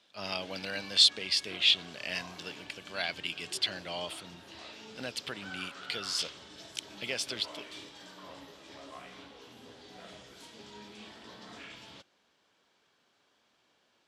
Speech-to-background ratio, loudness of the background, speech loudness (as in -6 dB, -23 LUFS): 16.5 dB, -47.5 LUFS, -31.0 LUFS